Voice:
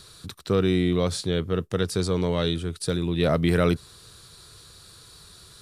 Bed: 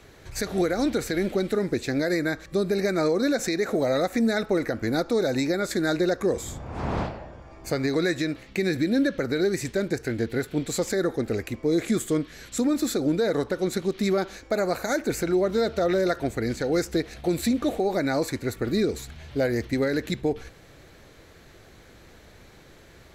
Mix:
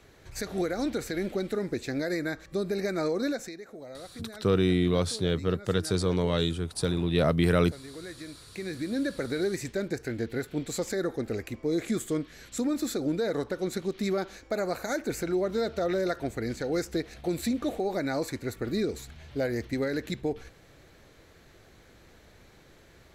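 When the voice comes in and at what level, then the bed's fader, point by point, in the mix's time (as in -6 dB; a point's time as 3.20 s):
3.95 s, -2.0 dB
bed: 3.29 s -5.5 dB
3.64 s -20 dB
7.87 s -20 dB
9.19 s -5 dB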